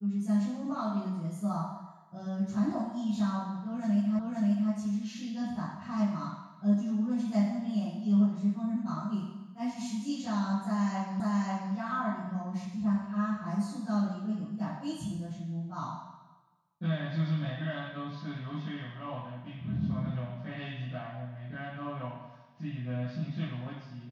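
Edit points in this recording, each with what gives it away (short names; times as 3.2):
4.19 repeat of the last 0.53 s
11.2 repeat of the last 0.54 s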